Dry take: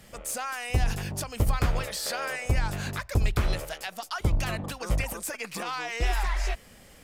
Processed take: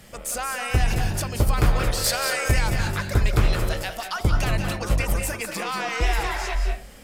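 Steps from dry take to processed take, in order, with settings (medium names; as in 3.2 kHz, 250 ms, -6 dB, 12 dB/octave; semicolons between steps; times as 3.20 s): 2.04–2.69 s: treble shelf 3.7 kHz +8.5 dB; reverberation RT60 0.40 s, pre-delay 174 ms, DRR 3.5 dB; trim +4 dB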